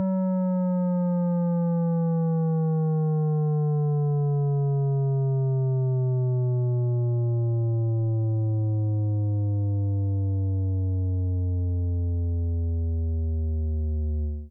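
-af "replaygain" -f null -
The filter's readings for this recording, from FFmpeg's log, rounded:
track_gain = +10.3 dB
track_peak = 0.102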